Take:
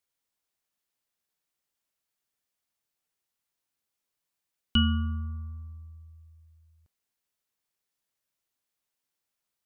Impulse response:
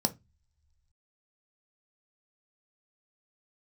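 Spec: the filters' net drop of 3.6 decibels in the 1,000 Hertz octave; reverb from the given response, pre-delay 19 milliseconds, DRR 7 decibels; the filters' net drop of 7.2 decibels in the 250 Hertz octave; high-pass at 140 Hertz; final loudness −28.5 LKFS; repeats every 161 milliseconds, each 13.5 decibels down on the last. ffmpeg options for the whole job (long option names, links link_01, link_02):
-filter_complex "[0:a]highpass=140,equalizer=frequency=250:width_type=o:gain=-7,equalizer=frequency=1000:width_type=o:gain=-5.5,aecho=1:1:161|322:0.211|0.0444,asplit=2[link_01][link_02];[1:a]atrim=start_sample=2205,adelay=19[link_03];[link_02][link_03]afir=irnorm=-1:irlink=0,volume=-13dB[link_04];[link_01][link_04]amix=inputs=2:normalize=0,volume=2dB"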